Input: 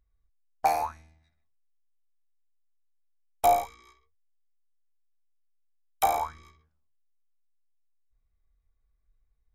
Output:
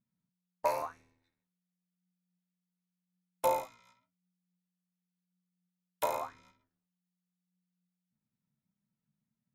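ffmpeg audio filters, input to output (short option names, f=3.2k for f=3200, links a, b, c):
-af "lowshelf=f=86:g=-10.5,aeval=exprs='val(0)*sin(2*PI*180*n/s)':c=same,flanger=delay=5:depth=3.8:regen=70:speed=0.91:shape=sinusoidal"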